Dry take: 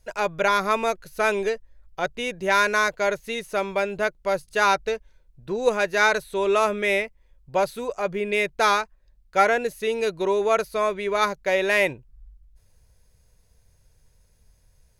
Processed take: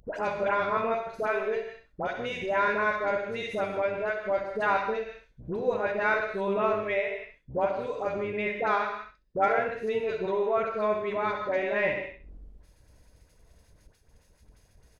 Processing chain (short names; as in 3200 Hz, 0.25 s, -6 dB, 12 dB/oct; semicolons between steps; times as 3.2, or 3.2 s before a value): octaver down 1 oct, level -4 dB; treble ducked by the level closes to 2400 Hz, closed at -18.5 dBFS; high shelf 4300 Hz -9.5 dB; feedback echo 66 ms, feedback 18%, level -9.5 dB; non-linear reverb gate 0.19 s flat, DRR 5 dB; expander -43 dBFS; dispersion highs, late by 77 ms, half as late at 1200 Hz; upward compressor, threshold -20 dBFS; low shelf 160 Hz -8.5 dB; gain -6 dB